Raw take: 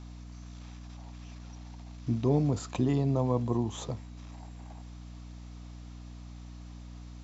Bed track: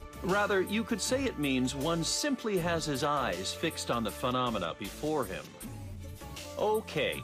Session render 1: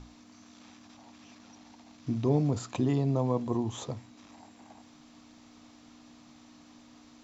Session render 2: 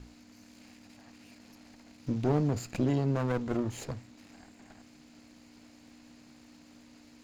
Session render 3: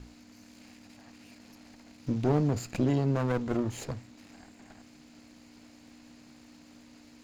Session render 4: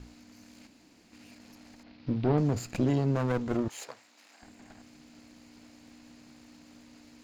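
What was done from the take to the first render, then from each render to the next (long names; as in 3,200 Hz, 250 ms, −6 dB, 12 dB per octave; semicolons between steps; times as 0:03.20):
mains-hum notches 60/120/180 Hz
lower of the sound and its delayed copy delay 0.43 ms
level +1.5 dB
0:00.67–0:01.12: fill with room tone; 0:01.83–0:02.38: Butterworth low-pass 4,700 Hz; 0:03.68–0:04.42: high-pass filter 690 Hz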